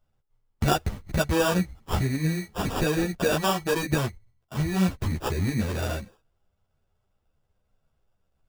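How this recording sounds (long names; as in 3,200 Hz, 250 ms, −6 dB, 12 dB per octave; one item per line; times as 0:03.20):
aliases and images of a low sample rate 2,100 Hz, jitter 0%
a shimmering, thickened sound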